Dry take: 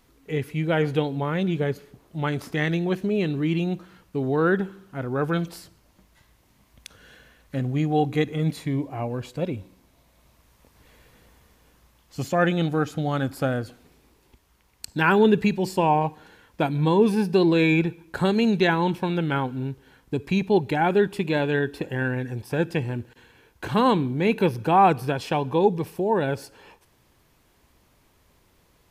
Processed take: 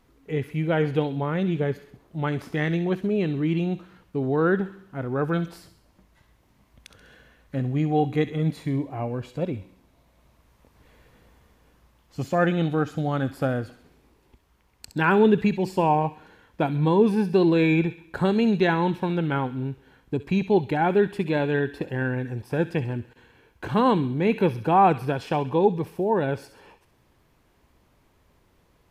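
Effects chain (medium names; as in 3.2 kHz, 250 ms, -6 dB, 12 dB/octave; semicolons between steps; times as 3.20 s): treble shelf 2.9 kHz -8.5 dB; feedback echo behind a high-pass 66 ms, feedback 50%, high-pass 2 kHz, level -10 dB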